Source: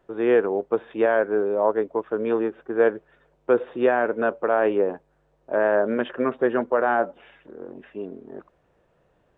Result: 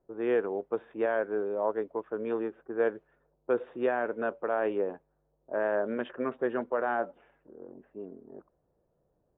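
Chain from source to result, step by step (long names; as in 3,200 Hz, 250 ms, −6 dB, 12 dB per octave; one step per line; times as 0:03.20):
low-pass that shuts in the quiet parts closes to 700 Hz, open at −15.5 dBFS
level −8.5 dB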